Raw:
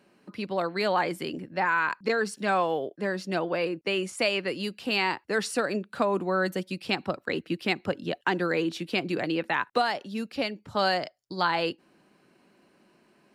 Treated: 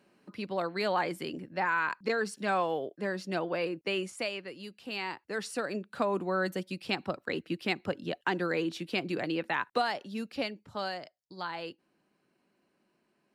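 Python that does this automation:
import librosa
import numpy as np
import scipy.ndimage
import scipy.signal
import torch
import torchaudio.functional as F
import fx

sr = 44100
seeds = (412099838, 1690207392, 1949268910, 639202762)

y = fx.gain(x, sr, db=fx.line((3.99, -4.0), (4.51, -13.0), (6.05, -4.0), (10.42, -4.0), (10.95, -12.0)))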